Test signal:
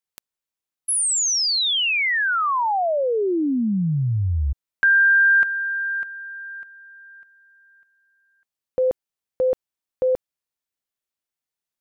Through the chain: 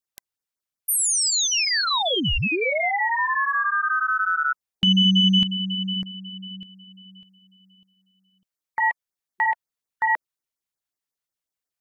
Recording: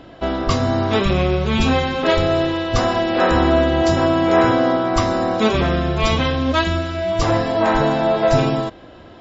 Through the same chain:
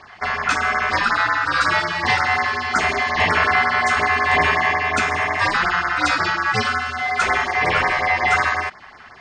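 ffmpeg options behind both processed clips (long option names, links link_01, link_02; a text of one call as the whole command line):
ffmpeg -i in.wav -af "acontrast=29,aeval=exprs='val(0)*sin(2*PI*1400*n/s)':channel_layout=same,afftfilt=real='re*(1-between(b*sr/1024,250*pow(3400/250,0.5+0.5*sin(2*PI*5.5*pts/sr))/1.41,250*pow(3400/250,0.5+0.5*sin(2*PI*5.5*pts/sr))*1.41))':imag='im*(1-between(b*sr/1024,250*pow(3400/250,0.5+0.5*sin(2*PI*5.5*pts/sr))/1.41,250*pow(3400/250,0.5+0.5*sin(2*PI*5.5*pts/sr))*1.41))':win_size=1024:overlap=0.75,volume=-2.5dB" out.wav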